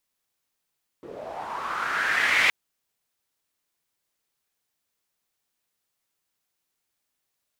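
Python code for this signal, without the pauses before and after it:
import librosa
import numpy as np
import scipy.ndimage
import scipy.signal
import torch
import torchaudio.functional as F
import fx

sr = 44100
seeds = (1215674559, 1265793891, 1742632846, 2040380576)

y = fx.riser_noise(sr, seeds[0], length_s=1.47, colour='pink', kind='bandpass', start_hz=360.0, end_hz=2200.0, q=4.3, swell_db=21.5, law='linear')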